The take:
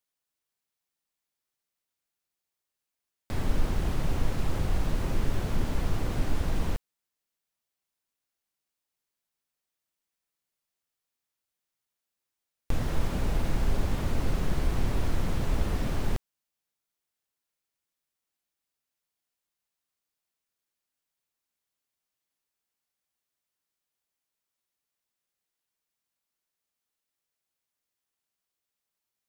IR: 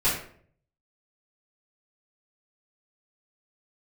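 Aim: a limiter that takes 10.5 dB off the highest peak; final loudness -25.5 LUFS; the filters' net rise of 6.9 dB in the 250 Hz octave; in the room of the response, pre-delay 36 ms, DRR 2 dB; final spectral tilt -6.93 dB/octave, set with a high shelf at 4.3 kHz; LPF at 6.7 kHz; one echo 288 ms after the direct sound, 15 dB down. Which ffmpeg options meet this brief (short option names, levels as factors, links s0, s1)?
-filter_complex "[0:a]lowpass=6700,equalizer=f=250:t=o:g=9,highshelf=f=4300:g=5.5,alimiter=limit=0.075:level=0:latency=1,aecho=1:1:288:0.178,asplit=2[s0][s1];[1:a]atrim=start_sample=2205,adelay=36[s2];[s1][s2]afir=irnorm=-1:irlink=0,volume=0.178[s3];[s0][s3]amix=inputs=2:normalize=0,volume=1.78"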